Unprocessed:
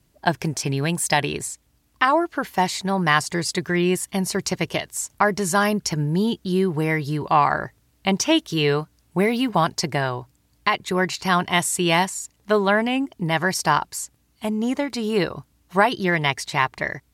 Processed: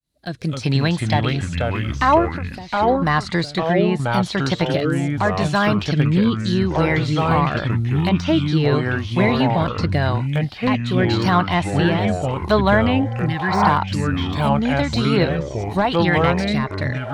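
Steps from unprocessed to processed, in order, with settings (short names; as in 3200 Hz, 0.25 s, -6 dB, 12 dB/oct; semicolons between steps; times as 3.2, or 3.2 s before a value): opening faded in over 0.64 s; 13.01–13.66 spectral repair 430–1500 Hz both; treble ducked by the level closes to 2800 Hz, closed at -17 dBFS; de-esser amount 95%; thirty-one-band EQ 400 Hz -7 dB, 4000 Hz +12 dB, 10000 Hz +6 dB; 2.32–3.02 compressor 3:1, threshold -36 dBFS, peak gain reduction 14.5 dB; rotary speaker horn 0.85 Hz; echoes that change speed 0.191 s, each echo -4 st, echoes 3; gain +5.5 dB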